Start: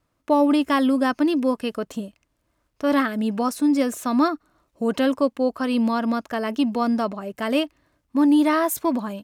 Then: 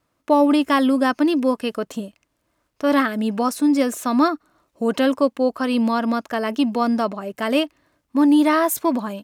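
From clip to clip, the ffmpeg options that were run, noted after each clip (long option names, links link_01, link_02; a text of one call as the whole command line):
ffmpeg -i in.wav -af "lowshelf=frequency=100:gain=-10,volume=3dB" out.wav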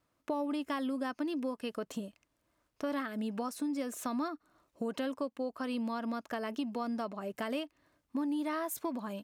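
ffmpeg -i in.wav -af "acompressor=threshold=-27dB:ratio=4,volume=-7dB" out.wav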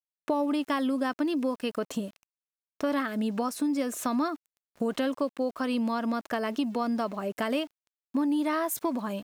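ffmpeg -i in.wav -af "aeval=exprs='val(0)*gte(abs(val(0)),0.00141)':channel_layout=same,volume=7dB" out.wav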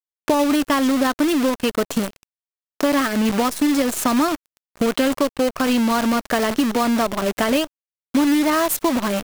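ffmpeg -i in.wav -filter_complex "[0:a]asplit=2[link_01][link_02];[link_02]acompressor=threshold=-35dB:ratio=12,volume=-1.5dB[link_03];[link_01][link_03]amix=inputs=2:normalize=0,acrusher=bits=6:dc=4:mix=0:aa=0.000001,volume=7.5dB" out.wav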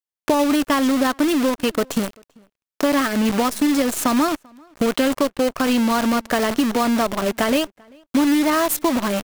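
ffmpeg -i in.wav -filter_complex "[0:a]asplit=2[link_01][link_02];[link_02]adelay=390.7,volume=-28dB,highshelf=frequency=4000:gain=-8.79[link_03];[link_01][link_03]amix=inputs=2:normalize=0" out.wav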